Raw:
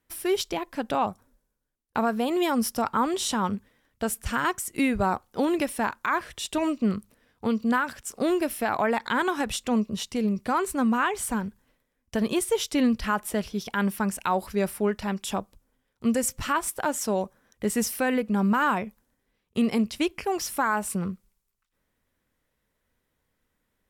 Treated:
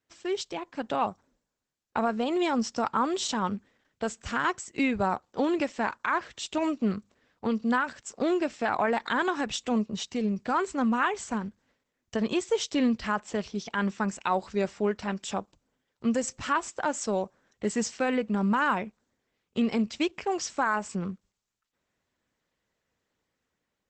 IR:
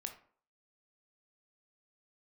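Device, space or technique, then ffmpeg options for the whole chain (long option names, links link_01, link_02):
video call: -af "highpass=frequency=140:poles=1,dynaudnorm=framelen=520:gausssize=3:maxgain=4dB,volume=-5dB" -ar 48000 -c:a libopus -b:a 12k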